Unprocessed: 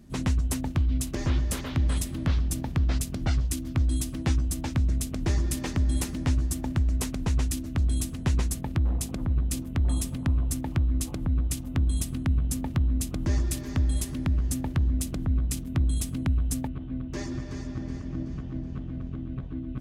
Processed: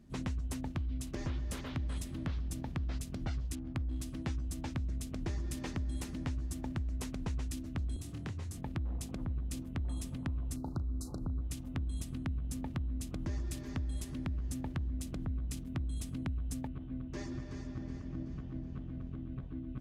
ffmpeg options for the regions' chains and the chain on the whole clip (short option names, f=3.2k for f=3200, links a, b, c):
-filter_complex "[0:a]asettb=1/sr,asplit=3[a][b][c];[a]atrim=end=3.554[d];[b]atrim=start=3.55:end=4.02,asetpts=PTS-STARTPTS,afade=t=in:d=0.004:c=qsin,afade=t=out:st=0.466:d=0.004:c=qsin,highshelf=f=4.8k:g=5.5,adynamicsmooth=sensitivity=6.5:basefreq=610[e];[c]atrim=start=4.016[f];[d][e]acrossfade=d=0.004:c1=hsin:c2=qsin[g];[g][f]acrossfade=d=0.004:c1=qsin:c2=hsin,asettb=1/sr,asplit=3[h][i][j];[h]atrim=end=7.964[k];[i]atrim=start=7.96:end=8.58,asetpts=PTS-STARTPTS,afade=t=in:d=0.004:c=qsin,afade=t=out:st=0.616:d=0.004:c=qsin,acompressor=threshold=-30dB:ratio=5:attack=3.2:release=140:knee=1:detection=peak,afreqshift=26,asplit=2[l][m];[m]adelay=27,volume=-6dB[n];[l][n]amix=inputs=2:normalize=0,atrim=end_sample=27342[o];[j]atrim=start=8.576[p];[k][o]acrossfade=d=0.004:c1=hsin:c2=qsin[q];[q][p]acrossfade=d=0.004:c1=qsin:c2=hsin,asettb=1/sr,asplit=3[r][s][t];[r]atrim=end=10.564[u];[s]atrim=start=10.56:end=11.41,asetpts=PTS-STARTPTS,afade=t=in:d=0.004:c=qsin,afade=t=out:st=0.846:d=0.004:c=qsin,aeval=exprs='val(0)+0.00224*sin(2*PI*400*n/s)':c=same,asuperstop=centerf=2400:order=20:qfactor=0.99,asplit=2[v][w];[w]adelay=36,volume=-12.5dB[x];[v][x]amix=inputs=2:normalize=0,atrim=end_sample=37485[y];[t]atrim=start=11.406[z];[u][y]acrossfade=d=0.004:c1=hsin:c2=qsin[aa];[aa][z]acrossfade=d=0.004:c1=qsin:c2=hsin,highshelf=f=8.2k:g=-8,acompressor=threshold=-25dB:ratio=6,volume=-7.5dB"